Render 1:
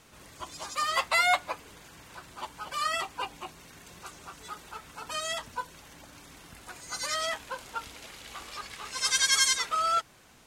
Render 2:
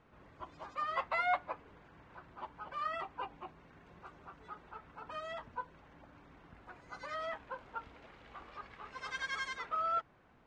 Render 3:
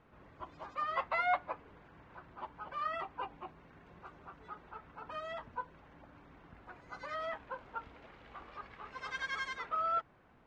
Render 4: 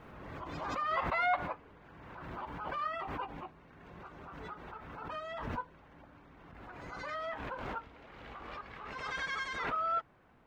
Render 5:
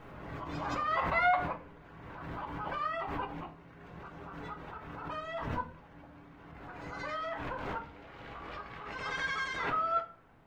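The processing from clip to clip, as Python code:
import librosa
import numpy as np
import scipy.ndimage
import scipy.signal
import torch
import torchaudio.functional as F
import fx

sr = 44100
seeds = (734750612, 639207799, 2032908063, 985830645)

y1 = scipy.signal.sosfilt(scipy.signal.butter(2, 1600.0, 'lowpass', fs=sr, output='sos'), x)
y1 = y1 * librosa.db_to_amplitude(-5.5)
y2 = fx.high_shelf(y1, sr, hz=6300.0, db=-9.0)
y2 = y2 * librosa.db_to_amplitude(1.0)
y3 = fx.pre_swell(y2, sr, db_per_s=29.0)
y4 = fx.room_shoebox(y3, sr, seeds[0], volume_m3=34.0, walls='mixed', distance_m=0.31)
y4 = y4 * librosa.db_to_amplitude(1.0)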